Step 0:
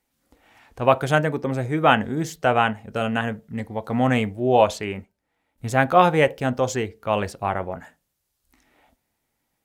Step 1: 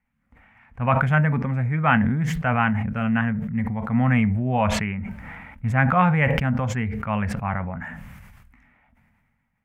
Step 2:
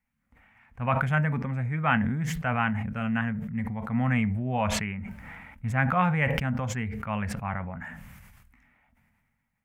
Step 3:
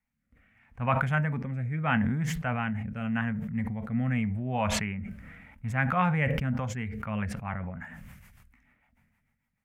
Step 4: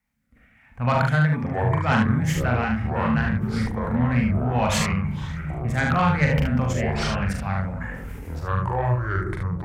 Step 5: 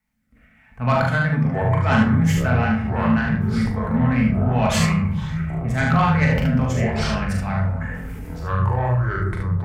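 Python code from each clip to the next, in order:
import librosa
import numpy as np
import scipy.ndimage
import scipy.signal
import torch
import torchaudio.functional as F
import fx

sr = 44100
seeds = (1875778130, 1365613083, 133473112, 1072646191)

y1 = fx.curve_eq(x, sr, hz=(230.0, 330.0, 970.0, 2200.0, 4000.0), db=(0, -22, -7, -3, -26))
y1 = fx.sustainer(y1, sr, db_per_s=29.0)
y1 = y1 * 10.0 ** (4.5 / 20.0)
y2 = fx.high_shelf(y1, sr, hz=3800.0, db=8.0)
y2 = y2 * 10.0 ** (-6.0 / 20.0)
y3 = fx.rotary_switch(y2, sr, hz=0.8, then_hz=6.7, switch_at_s=6.21)
y4 = fx.echo_pitch(y3, sr, ms=307, semitones=-6, count=3, db_per_echo=-6.0)
y4 = fx.cheby_harmonics(y4, sr, harmonics=(5,), levels_db=(-16,), full_scale_db=-11.0)
y4 = fx.room_early_taps(y4, sr, ms=(41, 73), db=(-4.0, -4.5))
y5 = fx.room_shoebox(y4, sr, seeds[0], volume_m3=590.0, walls='furnished', distance_m=1.5)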